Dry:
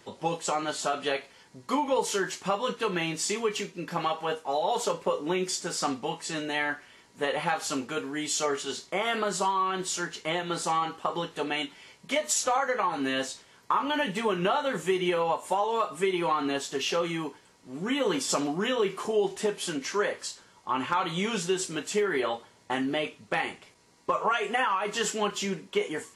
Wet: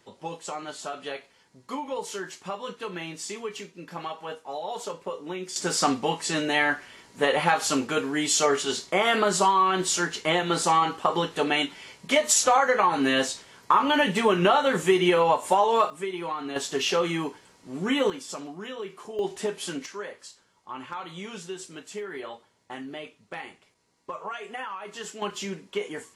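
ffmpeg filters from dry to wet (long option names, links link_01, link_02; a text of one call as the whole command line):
ffmpeg -i in.wav -af "asetnsamples=nb_out_samples=441:pad=0,asendcmd='5.56 volume volume 6dB;15.9 volume volume -5dB;16.56 volume volume 3.5dB;18.1 volume volume -9.5dB;19.19 volume volume -1dB;19.86 volume volume -9dB;25.22 volume volume -2.5dB',volume=-6dB" out.wav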